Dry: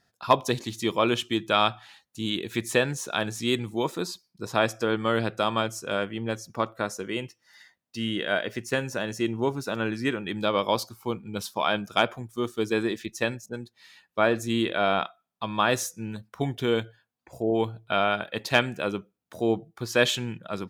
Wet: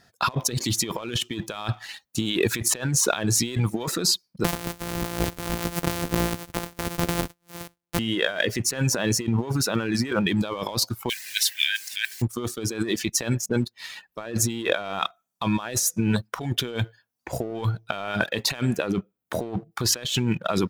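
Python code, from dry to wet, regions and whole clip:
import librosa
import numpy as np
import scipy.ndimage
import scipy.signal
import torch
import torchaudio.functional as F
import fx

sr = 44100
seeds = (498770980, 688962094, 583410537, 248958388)

y = fx.chain(x, sr, fx.sample_sort(block=256),
    fx.high_shelf(hz=8400.0, db=9.5), at=(4.44, 7.99))
y = fx.dmg_noise_colour(y, sr, seeds[0], colour='pink', level_db=-47.0, at=(11.08, 12.21), fade=0.02)
y = fx.brickwall_highpass(y, sr, low_hz=1500.0, at=(11.08, 12.21), fade=0.02)
y = fx.chain(y, sr, fx.peak_eq(hz=6000.0, db=-5.5, octaves=1.6),
    fx.doppler_dist(depth_ms=0.14), at=(18.79, 19.72))
y = fx.dereverb_blind(y, sr, rt60_s=0.53)
y = fx.over_compress(y, sr, threshold_db=-36.0, ratio=-1.0)
y = fx.leveller(y, sr, passes=1)
y = y * librosa.db_to_amplitude(5.5)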